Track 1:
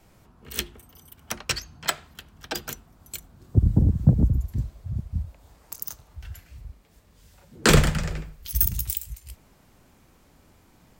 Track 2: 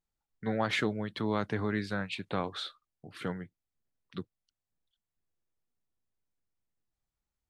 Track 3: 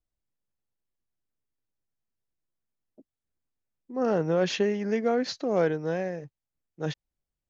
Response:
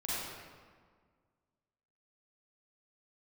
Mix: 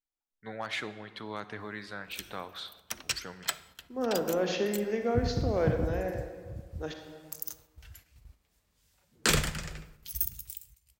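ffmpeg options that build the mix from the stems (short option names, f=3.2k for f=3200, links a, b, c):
-filter_complex "[0:a]tiltshelf=f=1.3k:g=-4.5,adelay=1600,volume=-8.5dB,afade=t=out:st=9.92:d=0.48:silence=0.334965,asplit=2[a][b];[b]volume=-23.5dB[c];[1:a]equalizer=f=140:w=0.31:g=-10.5,asoftclip=type=hard:threshold=-22dB,volume=-3.5dB,asplit=3[d][e][f];[e]volume=-16.5dB[g];[2:a]highpass=f=200:w=0.5412,highpass=f=200:w=1.3066,volume=-7dB,asplit=2[h][i];[i]volume=-6.5dB[j];[f]apad=whole_len=555506[k];[a][k]sidechaincompress=threshold=-49dB:ratio=8:attack=33:release=228[l];[3:a]atrim=start_sample=2205[m];[c][g][j]amix=inputs=3:normalize=0[n];[n][m]afir=irnorm=-1:irlink=0[o];[l][d][h][o]amix=inputs=4:normalize=0,agate=range=-6dB:threshold=-54dB:ratio=16:detection=peak"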